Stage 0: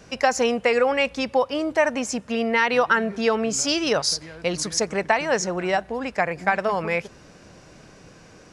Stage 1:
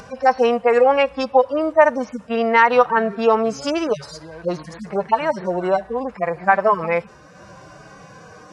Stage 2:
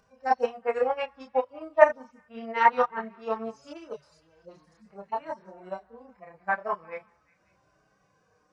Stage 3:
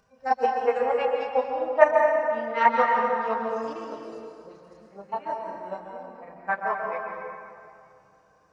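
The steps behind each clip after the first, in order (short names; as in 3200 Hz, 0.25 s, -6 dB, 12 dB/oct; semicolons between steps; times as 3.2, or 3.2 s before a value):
median-filter separation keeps harmonic; EQ curve 270 Hz 0 dB, 1100 Hz +10 dB, 2500 Hz -1 dB; upward compressor, threshold -37 dBFS; gain +1.5 dB
delay with a stepping band-pass 0.183 s, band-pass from 1100 Hz, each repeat 0.7 oct, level -12 dB; chorus voices 6, 0.76 Hz, delay 29 ms, depth 2.5 ms; upward expander 2.5:1, over -25 dBFS
plate-style reverb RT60 2.4 s, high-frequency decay 0.6×, pre-delay 0.115 s, DRR 0.5 dB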